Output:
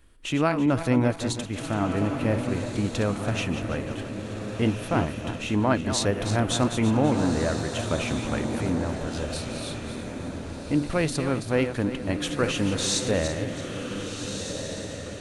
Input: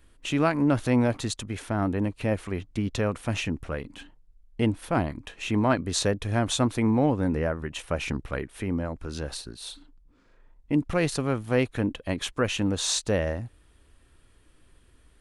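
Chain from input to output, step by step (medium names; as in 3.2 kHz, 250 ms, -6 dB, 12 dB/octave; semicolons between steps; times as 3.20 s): backward echo that repeats 166 ms, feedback 57%, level -9 dB; echo that smears into a reverb 1538 ms, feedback 42%, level -7 dB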